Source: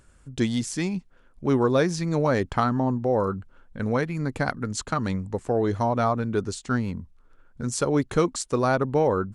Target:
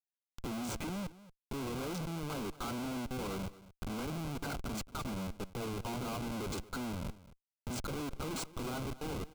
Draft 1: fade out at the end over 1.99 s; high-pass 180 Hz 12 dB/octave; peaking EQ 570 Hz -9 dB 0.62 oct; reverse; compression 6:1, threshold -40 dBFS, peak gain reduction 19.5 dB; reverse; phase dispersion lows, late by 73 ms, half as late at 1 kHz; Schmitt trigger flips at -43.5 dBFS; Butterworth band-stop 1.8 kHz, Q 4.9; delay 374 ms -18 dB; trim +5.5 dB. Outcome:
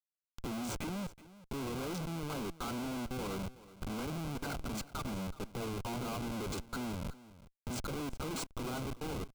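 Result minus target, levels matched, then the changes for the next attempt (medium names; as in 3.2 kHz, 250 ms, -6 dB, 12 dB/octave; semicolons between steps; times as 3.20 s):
echo 146 ms late
change: delay 228 ms -18 dB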